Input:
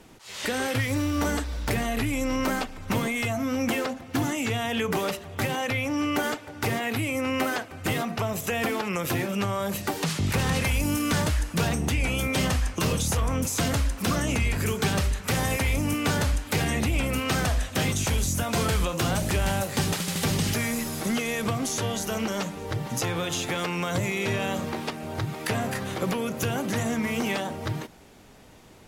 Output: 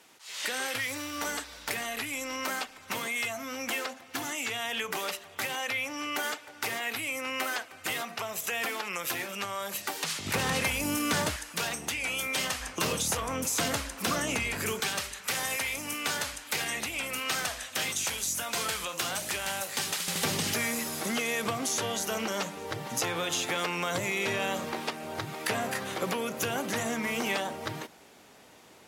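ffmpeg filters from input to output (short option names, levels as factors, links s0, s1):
-af "asetnsamples=n=441:p=0,asendcmd='10.26 highpass f 390;11.36 highpass f 1300;12.6 highpass f 490;14.8 highpass f 1500;20.08 highpass f 450',highpass=f=1400:p=1"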